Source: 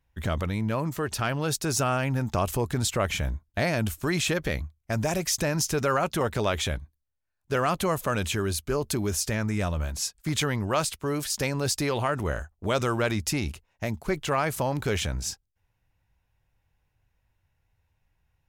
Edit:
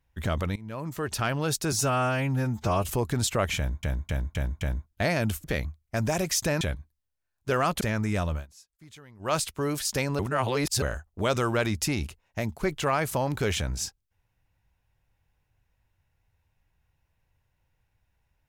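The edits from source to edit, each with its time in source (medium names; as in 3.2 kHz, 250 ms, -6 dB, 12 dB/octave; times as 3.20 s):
0.56–1.15 s: fade in, from -20.5 dB
1.72–2.50 s: stretch 1.5×
3.18–3.44 s: loop, 5 plays
4.01–4.40 s: delete
5.57–6.64 s: delete
7.84–9.26 s: delete
9.77–10.79 s: dip -23 dB, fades 0.15 s
11.64–12.27 s: reverse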